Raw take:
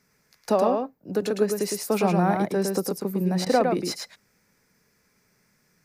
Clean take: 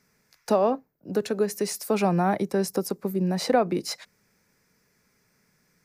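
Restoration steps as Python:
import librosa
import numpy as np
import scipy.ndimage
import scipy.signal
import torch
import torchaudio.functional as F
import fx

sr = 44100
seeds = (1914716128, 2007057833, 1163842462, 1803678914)

y = fx.fix_interpolate(x, sr, at_s=(3.45,), length_ms=12.0)
y = fx.fix_echo_inverse(y, sr, delay_ms=109, level_db=-4.5)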